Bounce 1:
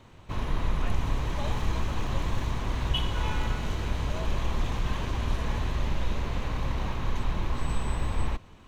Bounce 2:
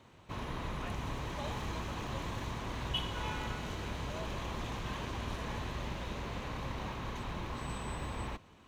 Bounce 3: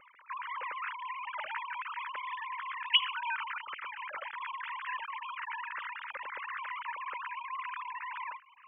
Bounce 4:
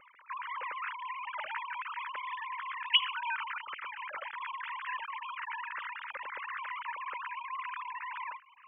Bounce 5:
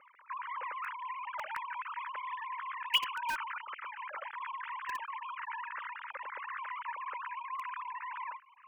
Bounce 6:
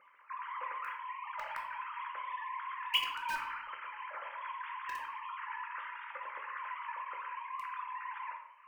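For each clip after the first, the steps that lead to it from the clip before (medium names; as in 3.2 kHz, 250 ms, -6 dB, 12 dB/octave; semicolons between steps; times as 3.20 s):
high-pass 130 Hz 6 dB/octave; trim -4.5 dB
formants replaced by sine waves; static phaser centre 1.7 kHz, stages 4; trim +5.5 dB
no audible change
band-pass filter 850 Hz, Q 0.56; in parallel at -9 dB: bit crusher 5-bit
simulated room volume 180 m³, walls mixed, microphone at 0.84 m; trim -3.5 dB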